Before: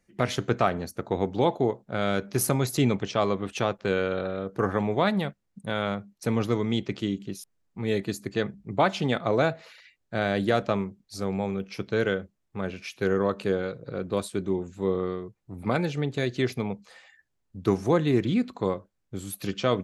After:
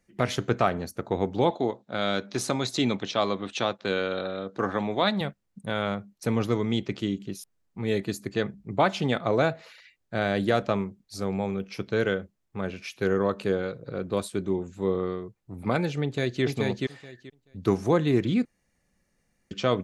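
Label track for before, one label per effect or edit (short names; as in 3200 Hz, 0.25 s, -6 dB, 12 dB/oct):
1.500000	5.210000	speaker cabinet 140–8100 Hz, peaks and dips at 150 Hz -8 dB, 420 Hz -4 dB, 3800 Hz +9 dB
16.030000	16.430000	echo throw 0.43 s, feedback 15%, level -2 dB
18.450000	19.510000	room tone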